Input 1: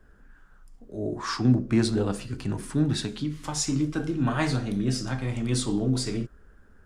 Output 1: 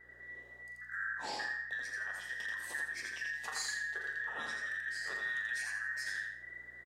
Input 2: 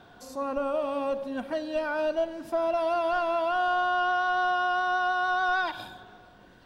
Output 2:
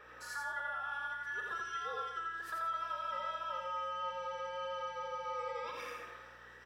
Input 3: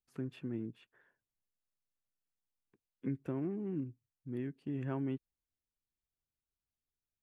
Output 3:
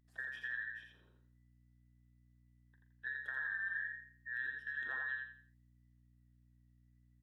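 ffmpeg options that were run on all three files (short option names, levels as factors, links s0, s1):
-filter_complex "[0:a]afftfilt=real='real(if(between(b,1,1012),(2*floor((b-1)/92)+1)*92-b,b),0)':imag='imag(if(between(b,1,1012),(2*floor((b-1)/92)+1)*92-b,b),0)*if(between(b,1,1012),-1,1)':win_size=2048:overlap=0.75,highpass=170,bass=f=250:g=-4,treble=f=4000:g=-4,bandreject=f=980:w=29,acompressor=threshold=0.0158:ratio=16,aeval=exprs='val(0)+0.000398*(sin(2*PI*60*n/s)+sin(2*PI*2*60*n/s)/2+sin(2*PI*3*60*n/s)/3+sin(2*PI*4*60*n/s)/4+sin(2*PI*5*60*n/s)/5)':c=same,asplit=2[s0][s1];[s1]adelay=41,volume=0.282[s2];[s0][s2]amix=inputs=2:normalize=0,aecho=1:1:84|168|252|336:0.708|0.234|0.0771|0.0254,adynamicequalizer=threshold=0.00316:dfrequency=2300:dqfactor=0.7:tfrequency=2300:tqfactor=0.7:attack=5:release=100:ratio=0.375:range=2:mode=boostabove:tftype=highshelf,volume=0.708"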